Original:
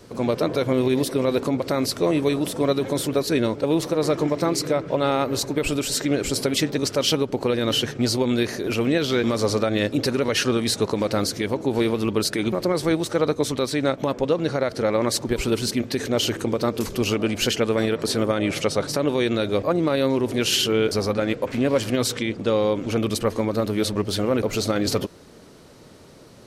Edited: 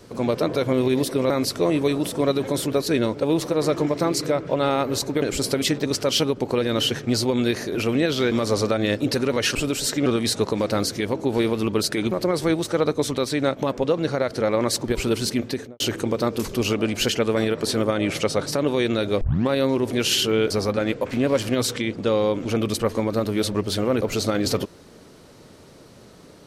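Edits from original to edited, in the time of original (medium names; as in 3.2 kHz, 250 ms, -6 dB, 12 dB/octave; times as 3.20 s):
1.30–1.71 s: delete
5.63–6.14 s: move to 10.47 s
15.85–16.21 s: studio fade out
19.62 s: tape start 0.29 s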